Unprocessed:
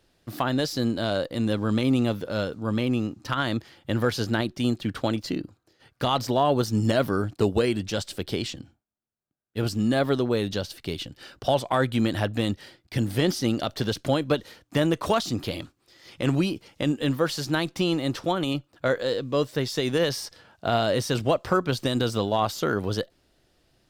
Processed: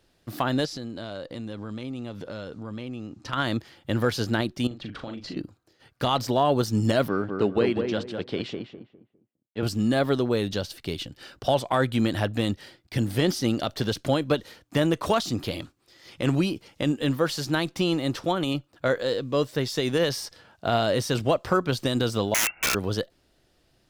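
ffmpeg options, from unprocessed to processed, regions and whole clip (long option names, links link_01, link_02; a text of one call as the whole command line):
ffmpeg -i in.wav -filter_complex "[0:a]asettb=1/sr,asplit=3[link_01][link_02][link_03];[link_01]atrim=end=0.654[link_04];[link_02]atrim=start=0.65:end=3.33,asetpts=PTS-STARTPTS,afade=type=in:duration=0.004:curve=qsin,afade=type=out:start_time=2.676:duration=0.004:curve=qsin,lowpass=8200,acompressor=threshold=-33dB:ratio=4:attack=3.2:release=140:knee=1:detection=peak[link_05];[link_03]atrim=start=3.326[link_06];[link_04][link_05]acrossfade=duration=0.004:curve1=hsin:curve2=qsin[link_07];[link_07][link_06]acrossfade=duration=0.004:curve1=qsin:curve2=hsin,asettb=1/sr,asplit=3[link_08][link_09][link_10];[link_08]atrim=end=4.674[link_11];[link_09]atrim=start=4.67:end=5.37,asetpts=PTS-STARTPTS,afade=type=in:duration=0.004:curve=qsin,afade=type=out:start_time=0.696:duration=0.004:curve=qsin,lowpass=4400,acompressor=threshold=-34dB:ratio=4:attack=3.2:release=140:knee=1:detection=peak,asplit=2[link_12][link_13];[link_13]adelay=40,volume=-6.5dB[link_14];[link_12][link_14]amix=inputs=2:normalize=0,atrim=end_sample=30870[link_15];[link_10]atrim=start=5.366[link_16];[link_11][link_15]acrossfade=duration=0.004:curve1=hsin:curve2=qsin[link_17];[link_17][link_16]acrossfade=duration=0.004:curve1=qsin:curve2=hsin,asettb=1/sr,asplit=3[link_18][link_19][link_20];[link_18]atrim=end=7.084[link_21];[link_19]atrim=start=7.08:end=9.63,asetpts=PTS-STARTPTS,afade=type=in:duration=0.004:curve=qsin,afade=type=out:start_time=2.546:duration=0.004:curve=qsin,aeval=exprs='sgn(val(0))*max(abs(val(0))-0.00299,0)':channel_layout=same,highpass=150,lowpass=3200,asplit=2[link_22][link_23];[link_23]adelay=203,lowpass=frequency=1400:poles=1,volume=-4.5dB,asplit=2[link_24][link_25];[link_25]adelay=203,lowpass=frequency=1400:poles=1,volume=0.3,asplit=2[link_26][link_27];[link_27]adelay=203,lowpass=frequency=1400:poles=1,volume=0.3,asplit=2[link_28][link_29];[link_29]adelay=203,lowpass=frequency=1400:poles=1,volume=0.3[link_30];[link_22][link_24][link_26][link_28][link_30]amix=inputs=5:normalize=0,atrim=end_sample=112455[link_31];[link_20]atrim=start=9.626[link_32];[link_21][link_31]acrossfade=duration=0.004:curve1=hsin:curve2=qsin[link_33];[link_33][link_32]acrossfade=duration=0.004:curve1=qsin:curve2=hsin,asettb=1/sr,asplit=3[link_34][link_35][link_36];[link_34]atrim=end=22.344[link_37];[link_35]atrim=start=22.34:end=22.75,asetpts=PTS-STARTPTS,afade=type=in:duration=0.004:curve=qsin,afade=type=out:start_time=0.406:duration=0.004:curve=qsin,aecho=1:1:1.5:0.8,atrim=end_sample=18081,lowpass=frequency=2400:width_type=q:width=0.5098,lowpass=frequency=2400:width_type=q:width=0.6013,lowpass=frequency=2400:width_type=q:width=0.9,lowpass=frequency=2400:width_type=q:width=2.563,afreqshift=-2800,aeval=exprs='(mod(7.5*val(0)+1,2)-1)/7.5':channel_layout=same[link_38];[link_36]atrim=start=22.746[link_39];[link_37][link_38]acrossfade=duration=0.004:curve1=hsin:curve2=qsin[link_40];[link_40][link_39]acrossfade=duration=0.004:curve1=qsin:curve2=hsin" out.wav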